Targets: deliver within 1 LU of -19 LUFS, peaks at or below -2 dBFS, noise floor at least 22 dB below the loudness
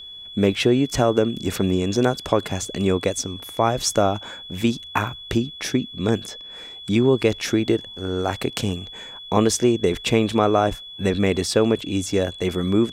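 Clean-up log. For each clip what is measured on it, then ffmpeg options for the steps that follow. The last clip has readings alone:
steady tone 3400 Hz; tone level -36 dBFS; loudness -22.0 LUFS; peak -2.5 dBFS; loudness target -19.0 LUFS
-> -af "bandreject=f=3.4k:w=30"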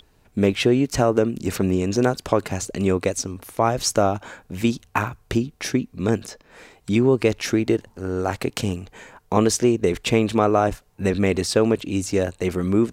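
steady tone none; loudness -22.0 LUFS; peak -2.5 dBFS; loudness target -19.0 LUFS
-> -af "volume=3dB,alimiter=limit=-2dB:level=0:latency=1"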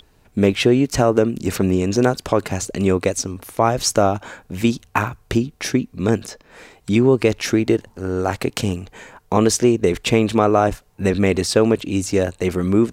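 loudness -19.0 LUFS; peak -2.0 dBFS; noise floor -55 dBFS

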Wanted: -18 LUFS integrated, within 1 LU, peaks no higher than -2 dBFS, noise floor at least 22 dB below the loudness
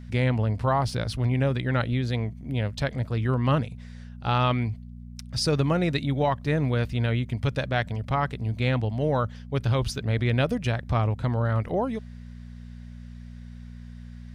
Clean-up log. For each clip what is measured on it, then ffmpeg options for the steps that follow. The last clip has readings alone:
hum 60 Hz; harmonics up to 240 Hz; hum level -40 dBFS; loudness -26.5 LUFS; peak -10.0 dBFS; loudness target -18.0 LUFS
-> -af "bandreject=f=60:t=h:w=4,bandreject=f=120:t=h:w=4,bandreject=f=180:t=h:w=4,bandreject=f=240:t=h:w=4"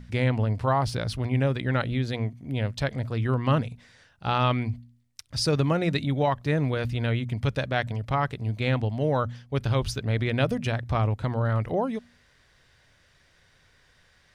hum none; loudness -27.0 LUFS; peak -10.0 dBFS; loudness target -18.0 LUFS
-> -af "volume=9dB,alimiter=limit=-2dB:level=0:latency=1"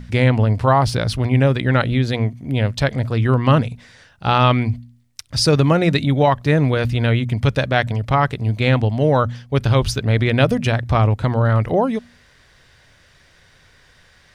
loudness -18.0 LUFS; peak -2.0 dBFS; noise floor -53 dBFS

